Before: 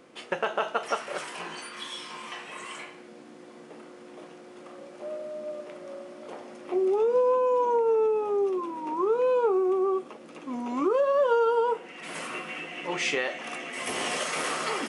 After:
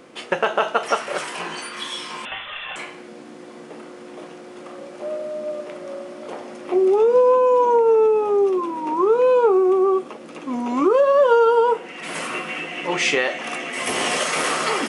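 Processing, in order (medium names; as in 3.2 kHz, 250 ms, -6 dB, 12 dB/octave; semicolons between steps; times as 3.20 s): 2.25–2.76 s: frequency inversion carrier 3.8 kHz; trim +8 dB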